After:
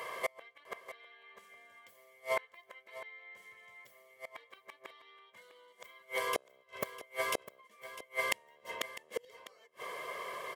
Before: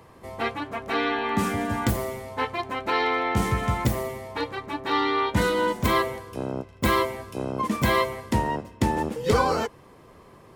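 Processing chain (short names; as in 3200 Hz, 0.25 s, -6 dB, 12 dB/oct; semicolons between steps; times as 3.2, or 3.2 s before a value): HPF 540 Hz 12 dB/oct; bell 16000 Hz +4 dB 0.51 oct; comb 1.8 ms, depth 74%; dynamic EQ 1000 Hz, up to -4 dB, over -37 dBFS, Q 1; compressor 6:1, threshold -32 dBFS, peak gain reduction 13 dB; small resonant body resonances 2100/3100 Hz, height 16 dB, ringing for 30 ms; flipped gate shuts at -27 dBFS, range -35 dB; echo 0.652 s -14.5 dB; gain +8 dB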